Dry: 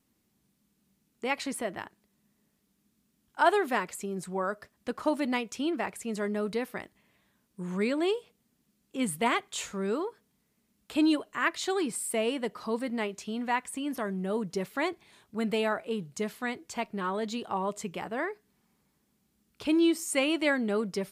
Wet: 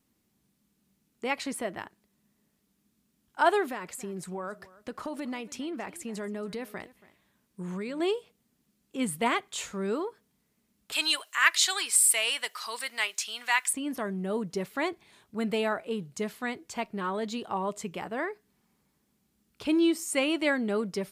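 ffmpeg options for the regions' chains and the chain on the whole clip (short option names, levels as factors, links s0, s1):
-filter_complex "[0:a]asettb=1/sr,asplit=3[s0][s1][s2];[s0]atrim=end=3.704[s3];[s1]atrim=start=3.7:end=8,asetpts=PTS-STARTPTS,afade=t=in:d=0.004:c=qsin,afade=t=out:st=4.296:d=0.004:c=qsin,acompressor=threshold=0.0251:ratio=5:attack=3.2:release=140:knee=1:detection=peak,aecho=1:1:279:0.106,atrim=end_sample=189630[s4];[s2]atrim=start=7.996[s5];[s3][s4]acrossfade=d=0.004:c1=hsin:c2=qsin[s6];[s6][s5]acrossfade=d=0.004:c1=qsin:c2=hsin,asettb=1/sr,asplit=3[s7][s8][s9];[s7]atrim=end=10.924[s10];[s8]atrim=start=10.92:end=13.73,asetpts=PTS-STARTPTS,afade=t=in:d=0.004:c=qsin,afade=t=out:st=2.806:d=0.004:c=qsin,highpass=1300,highshelf=f=2400:g=9,acontrast=32[s11];[s9]atrim=start=13.726[s12];[s10][s11]acrossfade=d=0.004:c1=hsin:c2=qsin[s13];[s13][s12]acrossfade=d=0.004:c1=qsin:c2=hsin"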